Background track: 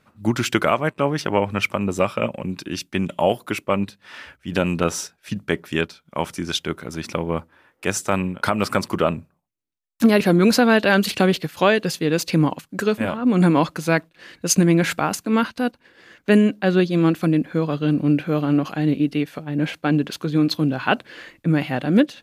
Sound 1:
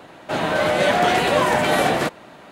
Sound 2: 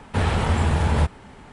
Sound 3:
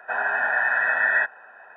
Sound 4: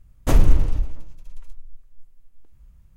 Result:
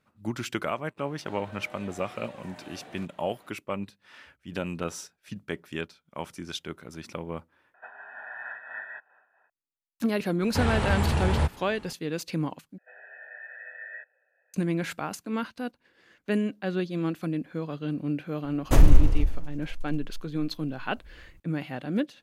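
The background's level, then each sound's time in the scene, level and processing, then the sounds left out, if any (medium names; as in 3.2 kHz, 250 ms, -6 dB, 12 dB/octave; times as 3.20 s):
background track -11.5 dB
0.97 s: add 1 -15 dB + compression, threshold -30 dBFS
7.74 s: replace with 3 -13.5 dB + random flutter of the level
10.41 s: add 2 -4.5 dB
12.78 s: replace with 3 -12.5 dB + vowel filter e
18.44 s: add 4 -1 dB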